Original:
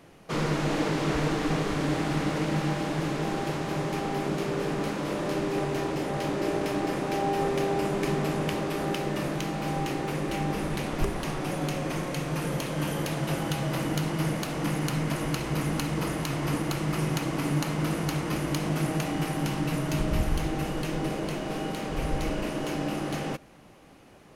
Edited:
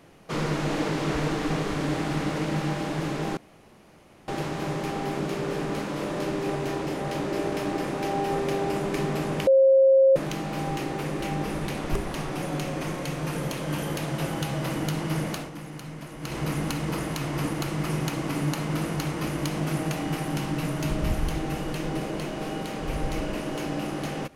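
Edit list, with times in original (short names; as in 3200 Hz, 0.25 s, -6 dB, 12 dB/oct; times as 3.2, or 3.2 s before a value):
3.37 insert room tone 0.91 s
8.56–9.25 bleep 536 Hz -13.5 dBFS
14.45–15.44 dip -10.5 dB, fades 0.15 s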